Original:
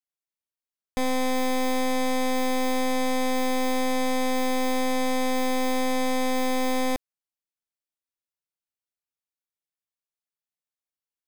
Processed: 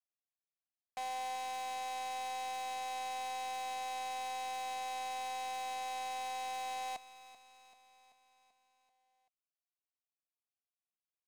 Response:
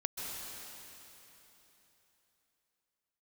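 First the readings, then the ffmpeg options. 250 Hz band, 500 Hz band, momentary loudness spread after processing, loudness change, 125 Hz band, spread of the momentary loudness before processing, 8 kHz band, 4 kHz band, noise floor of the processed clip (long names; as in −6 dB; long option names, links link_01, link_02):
−39.5 dB, −24.0 dB, 4 LU, −14.0 dB, can't be measured, 1 LU, −12.5 dB, −11.5 dB, below −85 dBFS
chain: -filter_complex "[0:a]asplit=3[link_01][link_02][link_03];[link_01]bandpass=frequency=730:width_type=q:width=8,volume=0dB[link_04];[link_02]bandpass=frequency=1090:width_type=q:width=8,volume=-6dB[link_05];[link_03]bandpass=frequency=2440:width_type=q:width=8,volume=-9dB[link_06];[link_04][link_05][link_06]amix=inputs=3:normalize=0,equalizer=frequency=400:width=1.2:gain=-7.5,aresample=16000,acrusher=bits=6:mode=log:mix=0:aa=0.000001,aresample=44100,crystalizer=i=3:c=0,aeval=exprs='0.015*(abs(mod(val(0)/0.015+3,4)-2)-1)':channel_layout=same,aecho=1:1:386|772|1158|1544|1930|2316:0.178|0.103|0.0598|0.0347|0.0201|0.0117,volume=1dB"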